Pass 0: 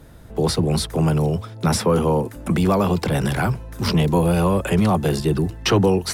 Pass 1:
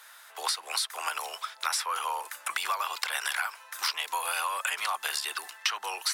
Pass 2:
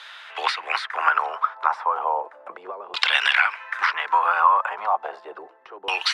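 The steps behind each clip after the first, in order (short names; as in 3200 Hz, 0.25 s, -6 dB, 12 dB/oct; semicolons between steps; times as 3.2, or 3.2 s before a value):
HPF 1100 Hz 24 dB/oct; compressor 6:1, threshold -33 dBFS, peak gain reduction 14 dB; gain +6 dB
short-mantissa float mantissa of 8-bit; LFO low-pass saw down 0.34 Hz 360–3600 Hz; gain +8.5 dB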